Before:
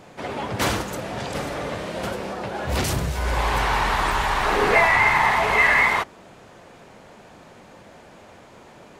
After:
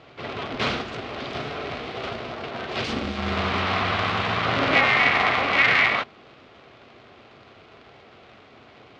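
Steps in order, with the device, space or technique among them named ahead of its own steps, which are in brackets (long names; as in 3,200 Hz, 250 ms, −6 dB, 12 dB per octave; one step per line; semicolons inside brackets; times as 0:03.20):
0:01.91–0:02.88: Butterworth high-pass 190 Hz 36 dB per octave
ring modulator pedal into a guitar cabinet (ring modulator with a square carrier 140 Hz; loudspeaker in its box 110–4,200 Hz, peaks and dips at 120 Hz +3 dB, 180 Hz −7 dB, 310 Hz −7 dB, 530 Hz −6 dB, 910 Hz −10 dB, 1,700 Hz −6 dB)
level +1.5 dB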